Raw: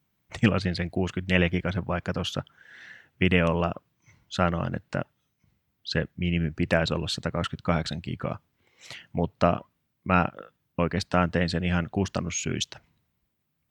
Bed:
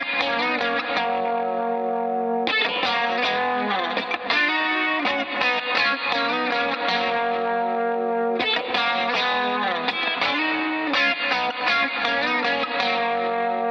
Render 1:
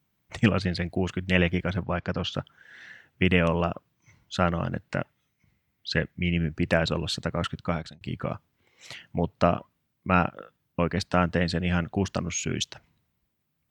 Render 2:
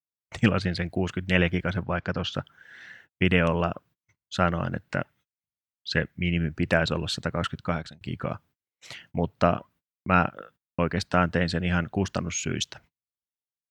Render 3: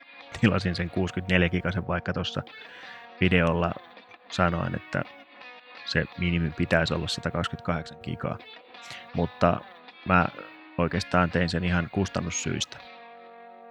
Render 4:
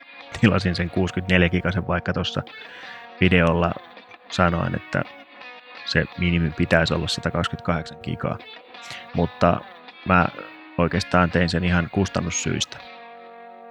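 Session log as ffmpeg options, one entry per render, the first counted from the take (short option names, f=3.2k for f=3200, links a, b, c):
-filter_complex "[0:a]asplit=3[a][b][c];[a]afade=t=out:st=1.83:d=0.02[d];[b]lowpass=f=5.6k:w=0.5412,lowpass=f=5.6k:w=1.3066,afade=t=in:st=1.83:d=0.02,afade=t=out:st=2.33:d=0.02[e];[c]afade=t=in:st=2.33:d=0.02[f];[d][e][f]amix=inputs=3:normalize=0,asettb=1/sr,asplit=3[g][h][i];[g]atrim=end=4.914[j];[h]atrim=start=4.91:end=6.31,asetpts=PTS-STARTPTS,afade=t=in:d=0.004:c=qsin,afade=t=out:st=1.396:d=0.004:c=qsin,equalizer=f=2.1k:t=o:w=0.47:g=7.5[k];[i]atrim=start=6.306[l];[j][k]acrossfade=d=0.004:c1=hsin:c2=qsin[m];[m][l]acrossfade=d=0.004:c1=qsin:c2=hsin,asplit=2[n][o];[n]atrim=end=8.01,asetpts=PTS-STARTPTS,afade=t=out:st=7.58:d=0.43[p];[o]atrim=start=8.01,asetpts=PTS-STARTPTS,afade=t=in:d=0.004:c=hsin[q];[p][q]concat=n=2:v=0:a=1"
-af "adynamicequalizer=threshold=0.00501:dfrequency=1500:dqfactor=4.1:tfrequency=1500:tqfactor=4.1:attack=5:release=100:ratio=0.375:range=2:mode=boostabove:tftype=bell,agate=range=-36dB:threshold=-53dB:ratio=16:detection=peak"
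-filter_complex "[1:a]volume=-24dB[a];[0:a][a]amix=inputs=2:normalize=0"
-af "volume=5dB,alimiter=limit=-1dB:level=0:latency=1"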